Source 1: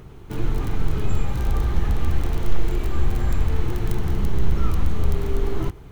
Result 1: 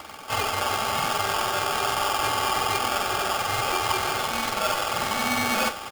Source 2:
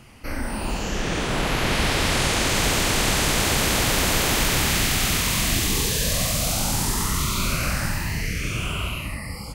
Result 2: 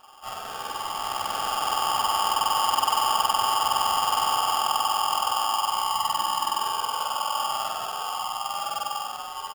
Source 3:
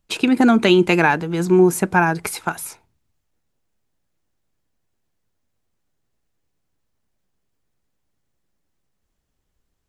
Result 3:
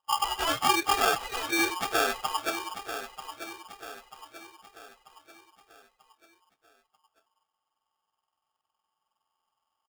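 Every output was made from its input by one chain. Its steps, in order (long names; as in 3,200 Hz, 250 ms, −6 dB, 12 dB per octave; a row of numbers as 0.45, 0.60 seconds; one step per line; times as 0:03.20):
frequency axis turned over on the octave scale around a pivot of 700 Hz
in parallel at +0.5 dB: downward compressor, threshold −28 dBFS
on the sum: head-to-tape spacing loss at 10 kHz 43 dB
repeating echo 939 ms, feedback 46%, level −11 dB
ring modulator with a square carrier 1,000 Hz
normalise the peak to −12 dBFS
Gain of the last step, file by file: +7.5, −7.5, −8.0 decibels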